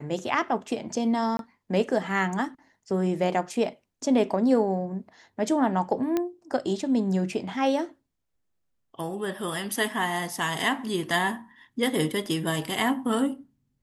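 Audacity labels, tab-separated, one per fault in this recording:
1.370000	1.390000	dropout 22 ms
6.170000	6.170000	pop -13 dBFS

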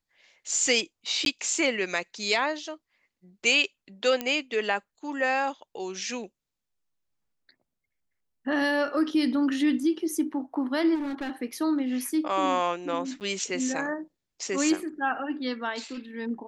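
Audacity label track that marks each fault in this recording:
1.250000	1.260000	dropout 12 ms
4.210000	4.210000	pop -14 dBFS
10.940000	11.310000	clipped -28 dBFS
13.200000	13.210000	dropout 9 ms

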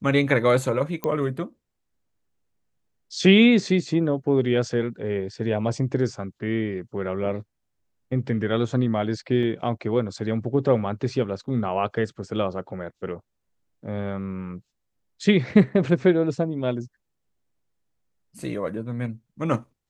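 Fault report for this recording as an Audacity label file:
1.040000	1.040000	pop -14 dBFS
9.430000	9.430000	dropout 3.5 ms

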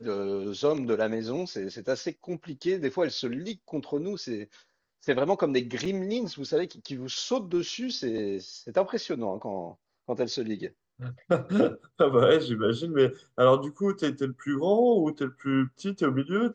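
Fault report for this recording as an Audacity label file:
5.850000	5.850000	dropout 4.1 ms

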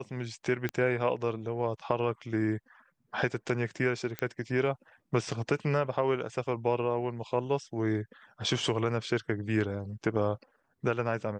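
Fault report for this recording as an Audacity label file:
0.690000	0.690000	pop -18 dBFS
4.190000	4.190000	pop -17 dBFS

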